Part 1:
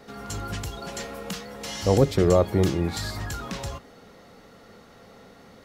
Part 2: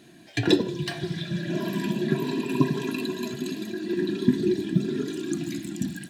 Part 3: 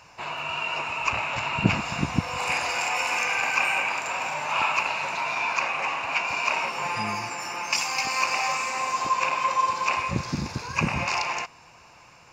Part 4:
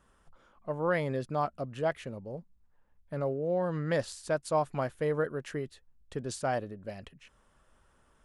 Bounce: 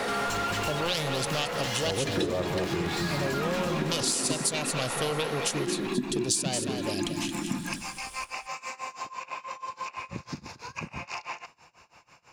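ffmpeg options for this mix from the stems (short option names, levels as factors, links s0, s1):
-filter_complex "[0:a]asplit=2[s0][s1];[s1]highpass=f=720:p=1,volume=44.7,asoftclip=type=tanh:threshold=0.075[s2];[s0][s2]amix=inputs=2:normalize=0,lowpass=f=2900:p=1,volume=0.501,volume=1.33,asplit=2[s3][s4];[s4]volume=0.501[s5];[1:a]adelay=1700,volume=1.33,asplit=3[s6][s7][s8];[s6]atrim=end=4.71,asetpts=PTS-STARTPTS,afade=t=out:st=4.706:d=0.004:c=hsin[s9];[s7]atrim=start=4.71:end=5.55,asetpts=PTS-STARTPTS,volume=0[s10];[s8]atrim=start=5.55,asetpts=PTS-STARTPTS,afade=t=in:d=0.004:c=hsin[s11];[s9][s10][s11]concat=n=3:v=0:a=1,asplit=2[s12][s13];[s13]volume=0.211[s14];[2:a]acompressor=threshold=0.0398:ratio=6,tremolo=f=6.1:d=0.93,volume=0.794[s15];[3:a]lowshelf=f=170:g=7.5,aeval=exprs='0.133*sin(PI/2*2.24*val(0)/0.133)':c=same,aexciter=amount=5.9:drive=8.2:freq=2800,volume=0.841,asplit=2[s16][s17];[s17]volume=0.299[s18];[s5][s14][s18]amix=inputs=3:normalize=0,aecho=0:1:223:1[s19];[s3][s12][s15][s16][s19]amix=inputs=5:normalize=0,lowshelf=f=130:g=-4,acompressor=threshold=0.0447:ratio=4"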